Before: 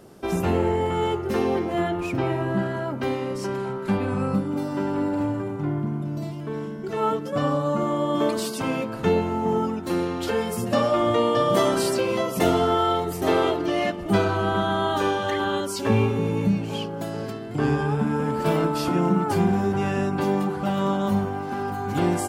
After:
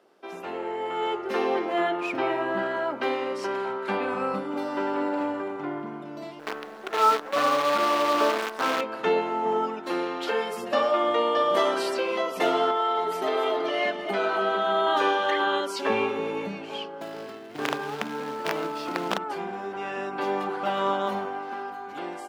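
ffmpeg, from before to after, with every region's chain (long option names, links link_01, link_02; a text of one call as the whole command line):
ffmpeg -i in.wav -filter_complex "[0:a]asettb=1/sr,asplit=3[link_01][link_02][link_03];[link_01]atrim=end=6.394[link_04];[link_02]atrim=start=6.39:end=8.81,asetpts=PTS-STARTPTS,afade=type=in:duration=0.004:curve=qsin,afade=type=out:start_time=2.416:duration=0.004:curve=qsin,highshelf=frequency=1900:width_type=q:width=3:gain=-9.5,acrusher=bits=5:dc=4:mix=0:aa=0.000001[link_05];[link_03]atrim=start=8.806[link_06];[link_04][link_05]acrossfade=duration=0.004:curve1=hsin:curve2=qsin[link_07];[link_07][link_06]acrossfade=duration=0.004:curve1=qsin:curve2=hsin,asettb=1/sr,asplit=3[link_08][link_09][link_10];[link_08]atrim=end=12.704[link_11];[link_09]atrim=start=12.7:end=14.87,asetpts=PTS-STARTPTS,afade=type=in:duration=0.004:curve=qsin,afade=type=out:start_time=2.166:duration=0.004:curve=qsin,acompressor=threshold=-22dB:ratio=6:attack=3.2:release=140:knee=1:detection=peak,aecho=1:1:4.7:0.56,atrim=end_sample=95697,aecho=1:1:273:0.282,atrim=end_sample=95697[link_12];[link_10]atrim=start=14.866[link_13];[link_11][link_12]acrossfade=duration=0.004:curve1=hsin:curve2=qsin[link_14];[link_14][link_13]acrossfade=duration=0.004:curve1=qsin:curve2=hsin,asettb=1/sr,asplit=3[link_15][link_16][link_17];[link_15]atrim=end=17.014[link_18];[link_16]atrim=start=17.01:end=19.18,asetpts=PTS-STARTPTS,afade=type=in:duration=0.004:curve=qsin,afade=type=out:start_time=2.166:duration=0.004:curve=qsin,lowshelf=frequency=200:gain=10.5,aeval=exprs='(mod(2.51*val(0)+1,2)-1)/2.51':channel_layout=same,acrusher=bits=4:mode=log:mix=0:aa=0.000001[link_19];[link_17]atrim=start=19.176[link_20];[link_18][link_19]acrossfade=duration=0.004:curve1=hsin:curve2=qsin[link_21];[link_21][link_20]acrossfade=duration=0.004:curve1=qsin:curve2=hsin,lowshelf=frequency=310:gain=-12,dynaudnorm=framelen=120:gausssize=17:maxgain=11.5dB,acrossover=split=240 4500:gain=0.0708 1 0.2[link_22][link_23][link_24];[link_22][link_23][link_24]amix=inputs=3:normalize=0,volume=-7dB" out.wav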